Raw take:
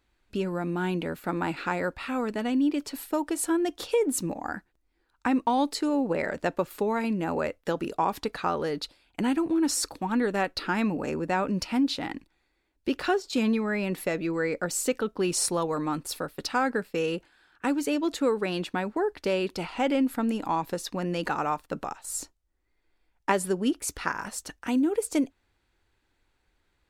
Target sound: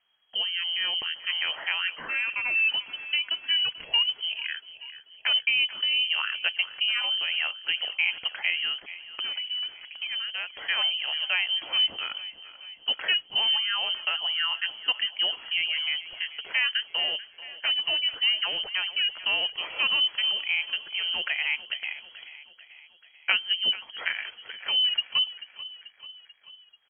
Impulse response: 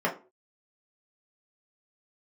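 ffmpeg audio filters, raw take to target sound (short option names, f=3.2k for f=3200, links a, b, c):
-filter_complex "[0:a]asplit=3[a][b][c];[a]afade=t=out:st=1.87:d=0.02[d];[b]afreqshift=380,afade=t=in:st=1.87:d=0.02,afade=t=out:st=2.68:d=0.02[e];[c]afade=t=in:st=2.68:d=0.02[f];[d][e][f]amix=inputs=3:normalize=0,asettb=1/sr,asplit=3[g][h][i];[g]atrim=end=8.724[j];[h]atrim=start=8.72:end=10.56,asetpts=PTS-STARTPTS,afade=t=in:d=0.004:c=qsin,afade=t=out:st=1.836:d=0.004:c=qsin,acompressor=threshold=-30dB:ratio=6[k];[i]atrim=start=10.556[l];[j][k]acrossfade=d=0.004:c1=hsin:c2=qsin[m];[m][l]acrossfade=d=0.004:c1=qsin:c2=hsin,aecho=1:1:438|876|1314|1752|2190:0.158|0.0903|0.0515|0.0294|0.0167,lowpass=f=2.8k:t=q:w=0.5098,lowpass=f=2.8k:t=q:w=0.6013,lowpass=f=2.8k:t=q:w=0.9,lowpass=f=2.8k:t=q:w=2.563,afreqshift=-3300"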